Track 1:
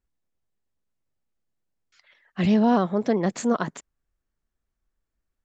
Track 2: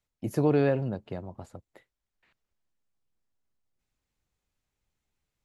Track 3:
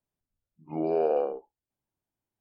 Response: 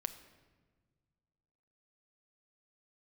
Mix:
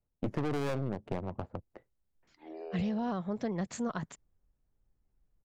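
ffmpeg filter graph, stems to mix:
-filter_complex "[0:a]asubboost=boost=6:cutoff=130,adelay=350,volume=0.355[s0];[1:a]acontrast=67,aeval=exprs='(tanh(14.1*val(0)+0.8)-tanh(0.8))/14.1':c=same,adynamicsmooth=sensitivity=7.5:basefreq=770,volume=1.41[s1];[2:a]highpass=f=330:w=0.5412,highpass=f=330:w=1.3066,equalizer=f=640:w=0.34:g=-10.5,acompressor=threshold=0.0224:ratio=6,adelay=1700,volume=0.531[s2];[s0][s1][s2]amix=inputs=3:normalize=0,acompressor=threshold=0.0355:ratio=6"

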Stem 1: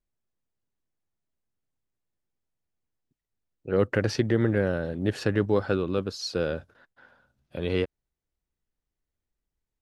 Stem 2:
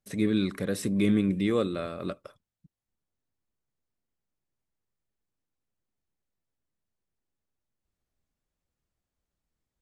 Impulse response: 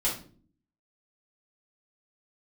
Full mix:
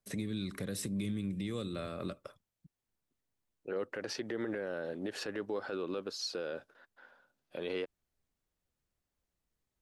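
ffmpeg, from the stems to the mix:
-filter_complex "[0:a]highpass=320,volume=0.708[s0];[1:a]acrossover=split=170|3000[s1][s2][s3];[s2]acompressor=threshold=0.0178:ratio=6[s4];[s1][s4][s3]amix=inputs=3:normalize=0,acompressor=threshold=0.0316:ratio=6,volume=0.841[s5];[s0][s5]amix=inputs=2:normalize=0,alimiter=level_in=1.5:limit=0.0631:level=0:latency=1:release=80,volume=0.668"

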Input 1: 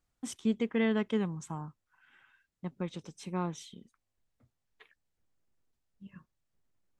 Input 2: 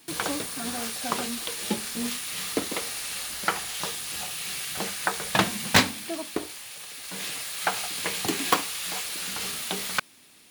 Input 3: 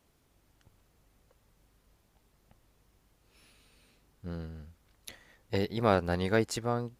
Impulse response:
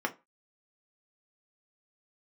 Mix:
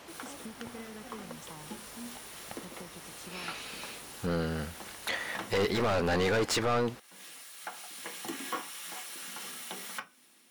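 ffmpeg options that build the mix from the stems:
-filter_complex "[0:a]volume=0.841[s0];[1:a]adynamicequalizer=threshold=0.00708:dfrequency=3300:dqfactor=0.7:tfrequency=3300:tqfactor=0.7:attack=5:release=100:ratio=0.375:range=2.5:mode=boostabove:tftype=highshelf,volume=0.237,afade=t=in:st=7.76:d=0.69:silence=0.398107,asplit=2[s1][s2];[s2]volume=0.501[s3];[2:a]asplit=2[s4][s5];[s5]highpass=f=720:p=1,volume=50.1,asoftclip=type=tanh:threshold=0.299[s6];[s4][s6]amix=inputs=2:normalize=0,lowpass=f=3300:p=1,volume=0.501,volume=0.75,asplit=2[s7][s8];[s8]apad=whole_len=463156[s9];[s1][s9]sidechaincompress=threshold=0.0316:ratio=8:attack=16:release=682[s10];[s0][s10]amix=inputs=2:normalize=0,highpass=180,acompressor=threshold=0.00631:ratio=6,volume=1[s11];[3:a]atrim=start_sample=2205[s12];[s3][s12]afir=irnorm=-1:irlink=0[s13];[s7][s11][s13]amix=inputs=3:normalize=0,alimiter=limit=0.0708:level=0:latency=1:release=19"

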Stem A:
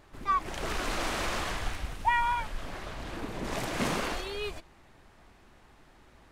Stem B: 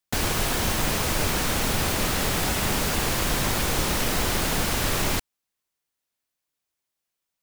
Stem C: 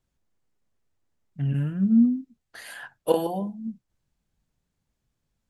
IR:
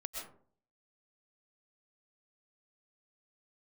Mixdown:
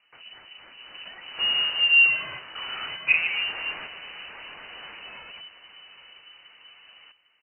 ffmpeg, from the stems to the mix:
-filter_complex "[0:a]acompressor=threshold=0.02:ratio=6,aeval=exprs='0.0531*sin(PI/2*5.62*val(0)/0.0531)':c=same,flanger=delay=5:depth=3.1:regen=65:speed=0.91:shape=sinusoidal,volume=0.596,asplit=3[s0][s1][s2];[s1]volume=0.158[s3];[s2]volume=0.562[s4];[1:a]acrossover=split=700[s5][s6];[s5]aeval=exprs='val(0)*(1-1/2+1/2*cos(2*PI*3.8*n/s))':c=same[s7];[s6]aeval=exprs='val(0)*(1-1/2-1/2*cos(2*PI*3.8*n/s))':c=same[s8];[s7][s8]amix=inputs=2:normalize=0,volume=0.119[s9];[2:a]volume=1.06,asplit=2[s10][s11];[s11]apad=whole_len=278401[s12];[s0][s12]sidechaingate=range=0.0224:threshold=0.00316:ratio=16:detection=peak[s13];[3:a]atrim=start_sample=2205[s14];[s3][s14]afir=irnorm=-1:irlink=0[s15];[s4]aecho=0:1:802|1604|2406:1|0.21|0.0441[s16];[s13][s9][s10][s15][s16]amix=inputs=5:normalize=0,lowpass=f=2600:t=q:w=0.5098,lowpass=f=2600:t=q:w=0.6013,lowpass=f=2600:t=q:w=0.9,lowpass=f=2600:t=q:w=2.563,afreqshift=-3000"

